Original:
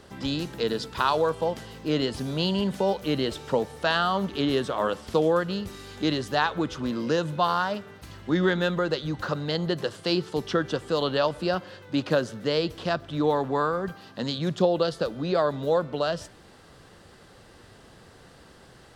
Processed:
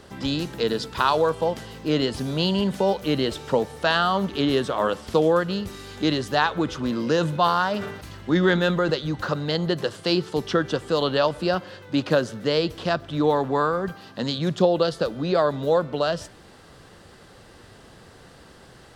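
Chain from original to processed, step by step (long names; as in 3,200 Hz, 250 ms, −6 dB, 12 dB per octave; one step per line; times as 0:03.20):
0:06.66–0:08.94: level that may fall only so fast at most 58 dB per second
level +3 dB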